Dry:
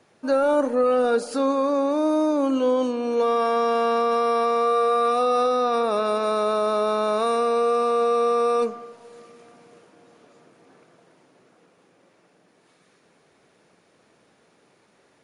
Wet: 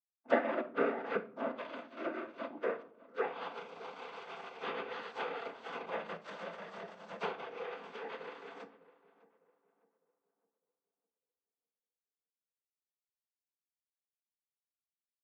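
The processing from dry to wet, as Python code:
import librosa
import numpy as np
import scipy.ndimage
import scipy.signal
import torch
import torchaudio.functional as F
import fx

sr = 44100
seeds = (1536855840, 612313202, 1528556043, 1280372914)

p1 = fx.wiener(x, sr, points=41)
p2 = fx.dereverb_blind(p1, sr, rt60_s=1.8)
p3 = fx.env_lowpass_down(p2, sr, base_hz=820.0, full_db=-21.0)
p4 = fx.highpass(p3, sr, hz=320.0, slope=6)
p5 = fx.power_curve(p4, sr, exponent=3.0)
p6 = fx.noise_vocoder(p5, sr, seeds[0], bands=16)
p7 = p6 + fx.echo_filtered(p6, sr, ms=604, feedback_pct=39, hz=1600.0, wet_db=-18.0, dry=0)
p8 = fx.room_shoebox(p7, sr, seeds[1], volume_m3=510.0, walls='furnished', distance_m=0.76)
y = F.gain(torch.from_numpy(p8), 2.5).numpy()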